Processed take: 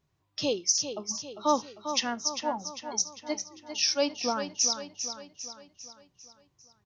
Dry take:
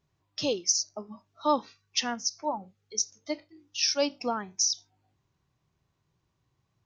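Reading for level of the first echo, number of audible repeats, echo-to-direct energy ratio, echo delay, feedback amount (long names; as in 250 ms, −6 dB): −9.0 dB, 5, −7.5 dB, 399 ms, 51%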